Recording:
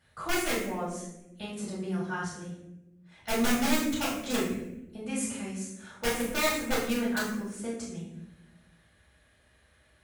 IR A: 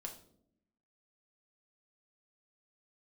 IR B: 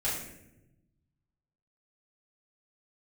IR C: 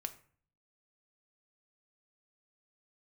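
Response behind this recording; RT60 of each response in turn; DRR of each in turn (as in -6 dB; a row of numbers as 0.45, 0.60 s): B; 0.65, 0.90, 0.45 s; 1.0, -9.0, 7.5 dB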